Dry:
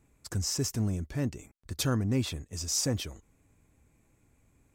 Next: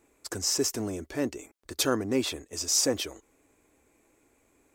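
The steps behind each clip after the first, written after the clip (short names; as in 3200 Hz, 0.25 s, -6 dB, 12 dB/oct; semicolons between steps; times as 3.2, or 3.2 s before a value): resonant low shelf 230 Hz -13.5 dB, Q 1.5; gain +5 dB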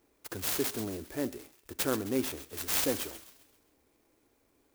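thin delay 0.132 s, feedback 44%, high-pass 3600 Hz, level -9 dB; on a send at -19 dB: reverb RT60 0.50 s, pre-delay 42 ms; on the sum: clock jitter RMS 0.073 ms; gain -4 dB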